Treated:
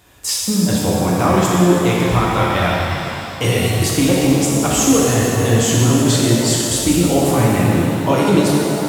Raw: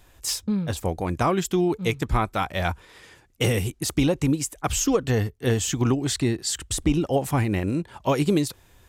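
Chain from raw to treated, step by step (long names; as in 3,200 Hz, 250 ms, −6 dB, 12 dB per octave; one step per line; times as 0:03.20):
high-pass filter 75 Hz
in parallel at +1.5 dB: brickwall limiter −17 dBFS, peak gain reduction 8 dB
on the sum: reverb with rising layers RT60 2.8 s, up +7 semitones, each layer −8 dB, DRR −4.5 dB
level −2 dB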